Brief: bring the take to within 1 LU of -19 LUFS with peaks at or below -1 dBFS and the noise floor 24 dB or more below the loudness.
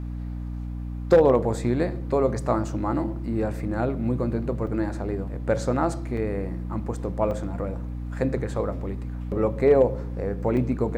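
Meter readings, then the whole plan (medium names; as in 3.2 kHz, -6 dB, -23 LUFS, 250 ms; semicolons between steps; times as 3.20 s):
dropouts 4; longest dropout 2.9 ms; hum 60 Hz; highest harmonic 300 Hz; hum level -29 dBFS; loudness -25.5 LUFS; peak level -8.0 dBFS; loudness target -19.0 LUFS
-> interpolate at 4.67/6.17/7.31/10.57 s, 2.9 ms; hum notches 60/120/180/240/300 Hz; trim +6.5 dB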